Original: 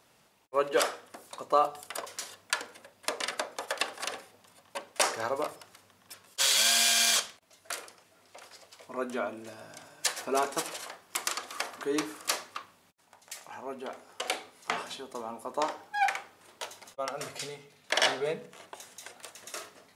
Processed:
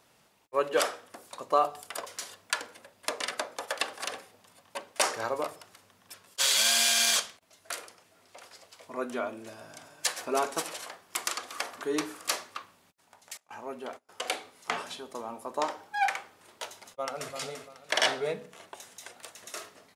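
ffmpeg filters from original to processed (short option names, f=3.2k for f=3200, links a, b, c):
-filter_complex "[0:a]asettb=1/sr,asplit=3[a][b][c];[a]atrim=end=13.374[d];[b]atrim=start=13.37:end=14.09,asetpts=PTS-STARTPTS,afade=t=in:d=0.004:c=qsin,afade=t=out:st=0.716:d=0.004:c=qsin,agate=range=-25dB:threshold=-48dB:ratio=16:release=100:detection=peak[e];[c]atrim=start=14.086[f];[d][e]acrossfade=d=0.004:c1=hsin:c2=qsin[g];[g][f]acrossfade=d=0.004:c1=qsin:c2=hsin,asplit=2[h][i];[i]afade=t=in:st=16.73:d=0.01,afade=t=out:st=17.34:d=0.01,aecho=0:1:340|680|1020|1360:0.446684|0.134005|0.0402015|0.0120605[j];[h][j]amix=inputs=2:normalize=0"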